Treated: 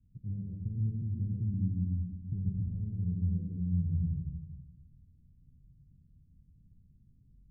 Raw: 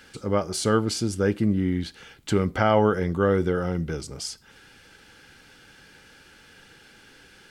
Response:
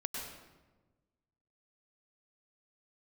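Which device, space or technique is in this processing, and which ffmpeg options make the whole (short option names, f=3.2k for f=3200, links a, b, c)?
club heard from the street: -filter_complex "[0:a]alimiter=limit=-17dB:level=0:latency=1:release=18,lowpass=f=150:w=0.5412,lowpass=f=150:w=1.3066[a];[1:a]atrim=start_sample=2205[b];[a][b]afir=irnorm=-1:irlink=0"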